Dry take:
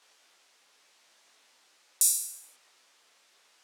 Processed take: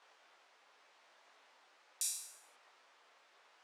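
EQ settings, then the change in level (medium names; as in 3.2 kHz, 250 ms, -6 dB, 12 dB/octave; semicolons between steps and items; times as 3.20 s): band-pass filter 860 Hz, Q 0.69; +3.5 dB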